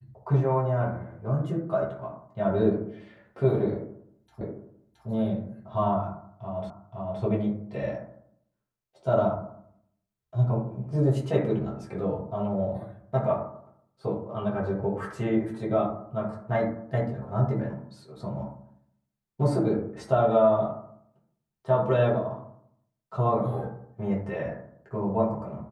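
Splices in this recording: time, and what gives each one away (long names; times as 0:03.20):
0:04.41: the same again, the last 0.67 s
0:06.70: the same again, the last 0.52 s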